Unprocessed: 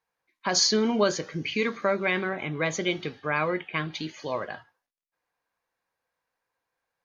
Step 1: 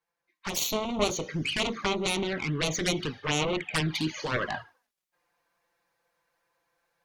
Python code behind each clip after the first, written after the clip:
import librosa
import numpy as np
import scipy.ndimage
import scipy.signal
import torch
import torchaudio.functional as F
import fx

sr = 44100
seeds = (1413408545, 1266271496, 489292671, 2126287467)

y = fx.cheby_harmonics(x, sr, harmonics=(7,), levels_db=(-8,), full_scale_db=-10.5)
y = fx.env_flanger(y, sr, rest_ms=5.9, full_db=-23.5)
y = fx.rider(y, sr, range_db=5, speed_s=0.5)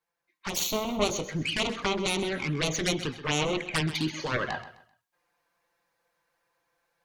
y = fx.echo_feedback(x, sr, ms=129, feedback_pct=30, wet_db=-14.0)